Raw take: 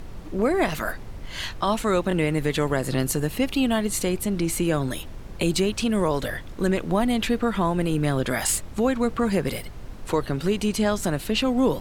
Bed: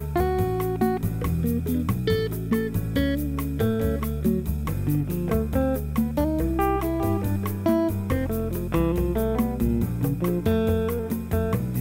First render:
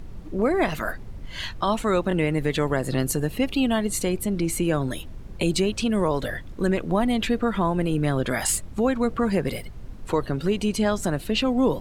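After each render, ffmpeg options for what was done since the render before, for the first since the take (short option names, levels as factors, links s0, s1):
-af "afftdn=nr=7:nf=-38"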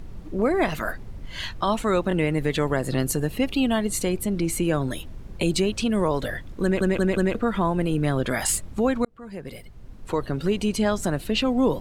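-filter_complex "[0:a]asplit=6[s0][s1][s2][s3][s4][s5];[s0]atrim=end=6.812[s6];[s1]atrim=start=6.628:end=6.812[s7];[s2]atrim=start=6.628:end=6.812[s8];[s3]atrim=start=6.628:end=6.812[s9];[s4]atrim=start=7.348:end=9.05,asetpts=PTS-STARTPTS,afade=t=out:st=1.698:d=0.004:c=hsin[s10];[s5]atrim=start=9.05,asetpts=PTS-STARTPTS,afade=t=in:d=1.4[s11];[s6][s7]acrossfade=d=0.004:c1=hsin:c2=hsin[s12];[s12][s8]acrossfade=d=0.004:c1=hsin:c2=hsin[s13];[s13][s9]acrossfade=d=0.004:c1=hsin:c2=hsin[s14];[s10][s11]concat=n=2:v=0:a=1[s15];[s14][s15]acrossfade=d=0.004:c1=hsin:c2=hsin"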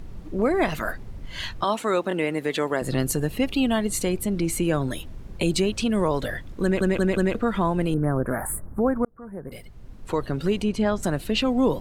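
-filter_complex "[0:a]asettb=1/sr,asplit=3[s0][s1][s2];[s0]atrim=end=1.644[s3];[s1]atrim=start=1.64:end=2.82,asetpts=PTS-STARTPTS,afade=t=in:d=0.004:c=qsin,afade=t=out:st=1.176:d=0.004:c=qsin,highpass=260[s4];[s2]atrim=start=2.816[s5];[s3][s4]acrossfade=d=0.004:c1=hsin:c2=qsin[s6];[s6][s5]acrossfade=d=0.004:c1=qsin:c2=hsin,asettb=1/sr,asplit=3[s7][s8][s9];[s7]atrim=end=7.944[s10];[s8]atrim=start=7.94:end=9.52,asetpts=PTS-STARTPTS,afade=t=in:d=0.004:c=qsin,afade=t=out:st=1.576:d=0.004:c=qsin,asuperstop=centerf=4200:order=8:qfactor=0.51[s11];[s9]atrim=start=9.516[s12];[s10][s11]acrossfade=d=0.004:c1=hsin:c2=qsin[s13];[s13][s12]acrossfade=d=0.004:c1=qsin:c2=hsin,asettb=1/sr,asplit=3[s14][s15][s16];[s14]atrim=end=10.624[s17];[s15]atrim=start=10.62:end=11.03,asetpts=PTS-STARTPTS,afade=t=in:d=0.004:c=qsin,afade=t=out:st=0.406:d=0.004:c=qsin,lowpass=f=2300:p=1[s18];[s16]atrim=start=11.026[s19];[s17][s18]acrossfade=d=0.004:c1=hsin:c2=qsin[s20];[s20][s19]acrossfade=d=0.004:c1=qsin:c2=hsin"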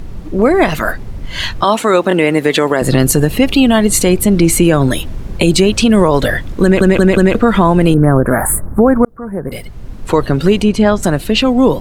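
-af "dynaudnorm=f=370:g=9:m=1.5,alimiter=level_in=3.76:limit=0.891:release=50:level=0:latency=1"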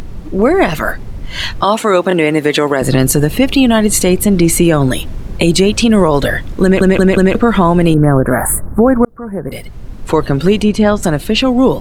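-af "acompressor=mode=upward:threshold=0.0562:ratio=2.5"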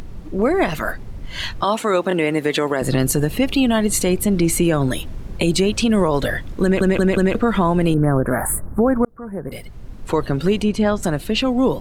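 -af "volume=0.447"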